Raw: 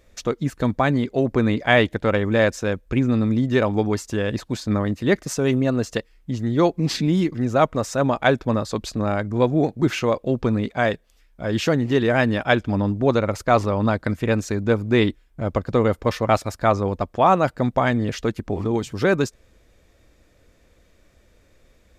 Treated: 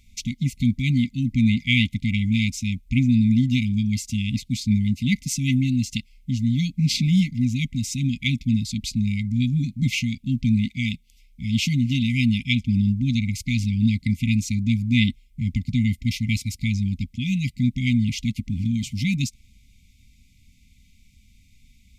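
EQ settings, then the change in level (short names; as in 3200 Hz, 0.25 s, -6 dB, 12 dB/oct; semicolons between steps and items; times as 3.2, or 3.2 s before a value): brick-wall FIR band-stop 270–2000 Hz; +3.0 dB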